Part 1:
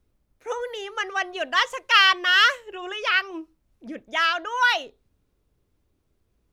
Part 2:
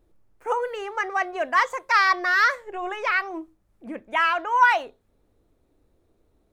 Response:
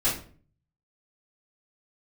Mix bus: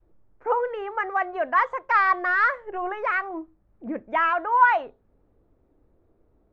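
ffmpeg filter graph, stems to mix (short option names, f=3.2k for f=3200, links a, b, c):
-filter_complex "[0:a]dynaudnorm=f=270:g=9:m=11.5dB,aeval=exprs='0.178*(abs(mod(val(0)/0.178+3,4)-2)-1)':c=same,volume=-11.5dB[a];[1:a]volume=2dB,asplit=2[b][c];[c]apad=whole_len=287846[d];[a][d]sidechaincompress=threshold=-23dB:ratio=8:attack=16:release=277[e];[e][b]amix=inputs=2:normalize=0,lowpass=1.5k,adynamicequalizer=threshold=0.0126:dfrequency=350:dqfactor=0.82:tfrequency=350:tqfactor=0.82:attack=5:release=100:ratio=0.375:range=2.5:mode=cutabove:tftype=bell"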